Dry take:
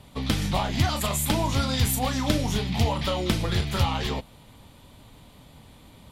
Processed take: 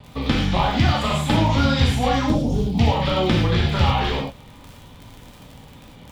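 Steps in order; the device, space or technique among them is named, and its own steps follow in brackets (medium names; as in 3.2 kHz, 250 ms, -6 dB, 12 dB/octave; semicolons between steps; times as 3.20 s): lo-fi chain (low-pass 3.8 kHz 12 dB/octave; wow and flutter; crackle 47 per s -35 dBFS); 2.26–2.79 s: FFT filter 500 Hz 0 dB, 1.9 kHz -23 dB, 9 kHz 0 dB; gated-style reverb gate 130 ms flat, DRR -1.5 dB; trim +3 dB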